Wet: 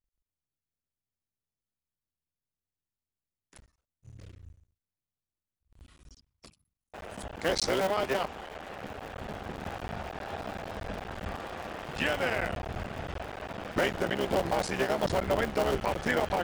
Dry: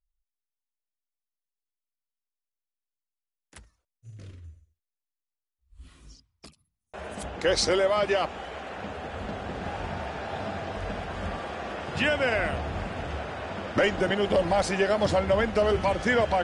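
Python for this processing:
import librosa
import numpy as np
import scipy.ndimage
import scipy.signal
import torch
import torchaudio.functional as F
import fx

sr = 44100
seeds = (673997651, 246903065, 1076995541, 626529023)

y = fx.cycle_switch(x, sr, every=3, mode='muted')
y = F.gain(torch.from_numpy(y), -3.0).numpy()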